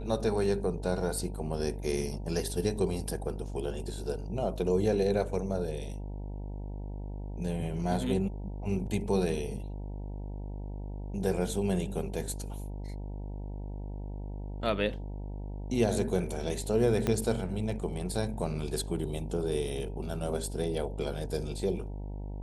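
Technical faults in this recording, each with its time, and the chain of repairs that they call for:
buzz 50 Hz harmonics 19 -38 dBFS
17.07 s: pop -15 dBFS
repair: de-click; de-hum 50 Hz, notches 19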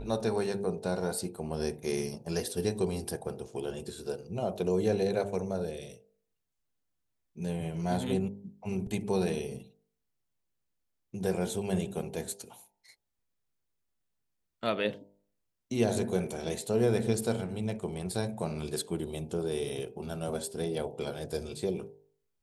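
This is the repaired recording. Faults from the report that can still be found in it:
17.07 s: pop

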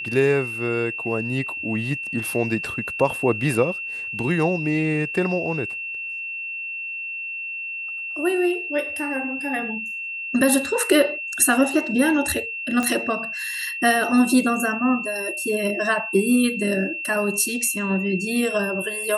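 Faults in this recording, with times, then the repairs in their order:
whine 2.7 kHz -28 dBFS
12.83 s: pop -11 dBFS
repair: de-click; band-stop 2.7 kHz, Q 30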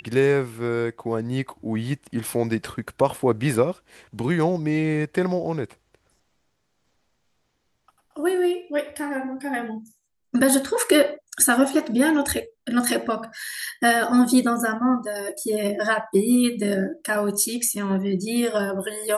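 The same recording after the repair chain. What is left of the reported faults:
nothing left

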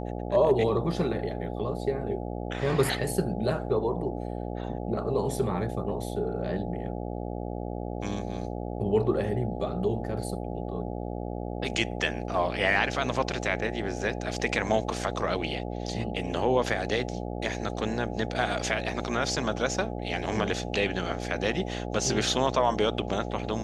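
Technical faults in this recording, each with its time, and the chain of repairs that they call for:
buzz 60 Hz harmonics 14 -34 dBFS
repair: de-hum 60 Hz, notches 14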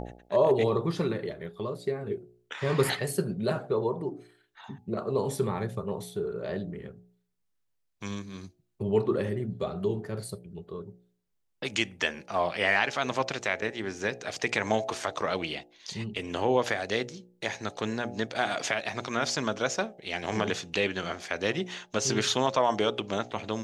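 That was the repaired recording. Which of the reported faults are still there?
nothing left

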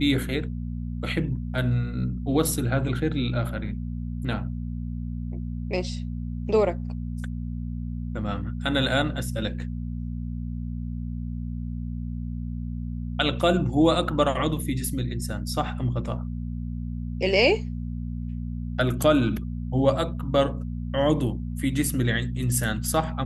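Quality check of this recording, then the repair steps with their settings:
hum 60 Hz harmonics 4 -31 dBFS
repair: de-hum 60 Hz, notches 4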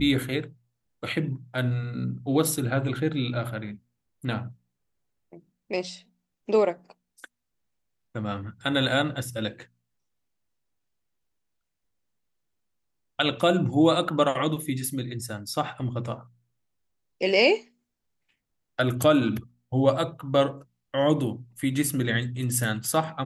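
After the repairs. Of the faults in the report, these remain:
nothing left

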